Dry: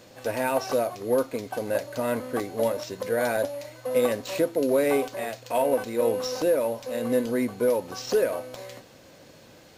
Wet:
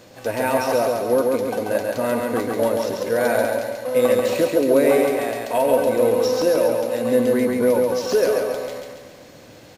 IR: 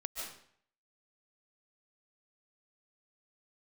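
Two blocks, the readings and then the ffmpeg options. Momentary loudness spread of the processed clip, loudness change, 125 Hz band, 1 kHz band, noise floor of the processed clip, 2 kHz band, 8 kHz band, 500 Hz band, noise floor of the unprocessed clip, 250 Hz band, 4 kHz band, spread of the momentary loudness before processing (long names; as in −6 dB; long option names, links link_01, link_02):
6 LU, +6.5 dB, +5.5 dB, +6.5 dB, −45 dBFS, +6.0 dB, +5.0 dB, +7.0 dB, −51 dBFS, +6.5 dB, +5.0 dB, 8 LU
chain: -filter_complex "[0:a]aecho=1:1:138|276|414|552|690|828|966:0.708|0.354|0.177|0.0885|0.0442|0.0221|0.0111,asplit=2[link_01][link_02];[1:a]atrim=start_sample=2205,lowpass=3000[link_03];[link_02][link_03]afir=irnorm=-1:irlink=0,volume=-13dB[link_04];[link_01][link_04]amix=inputs=2:normalize=0,volume=3dB"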